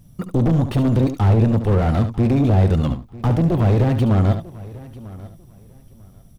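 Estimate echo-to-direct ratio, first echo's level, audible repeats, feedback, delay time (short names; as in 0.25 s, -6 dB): -9.0 dB, -9.5 dB, 4, no steady repeat, 72 ms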